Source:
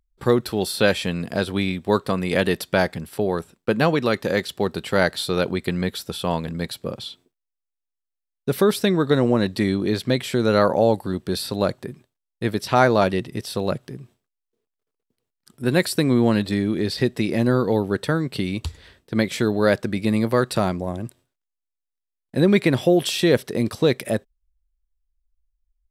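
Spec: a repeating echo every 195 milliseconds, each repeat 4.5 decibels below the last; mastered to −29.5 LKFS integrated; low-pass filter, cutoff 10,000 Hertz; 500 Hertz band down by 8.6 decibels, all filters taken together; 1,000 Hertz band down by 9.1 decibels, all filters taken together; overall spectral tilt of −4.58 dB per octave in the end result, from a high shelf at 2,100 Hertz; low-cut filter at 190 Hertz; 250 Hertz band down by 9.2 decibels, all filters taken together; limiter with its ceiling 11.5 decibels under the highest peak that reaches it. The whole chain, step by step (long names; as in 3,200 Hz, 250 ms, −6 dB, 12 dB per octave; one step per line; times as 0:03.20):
high-pass filter 190 Hz
low-pass filter 10,000 Hz
parametric band 250 Hz −8 dB
parametric band 500 Hz −5.5 dB
parametric band 1,000 Hz −8 dB
high-shelf EQ 2,100 Hz −9 dB
brickwall limiter −20.5 dBFS
repeating echo 195 ms, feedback 60%, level −4.5 dB
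level +2.5 dB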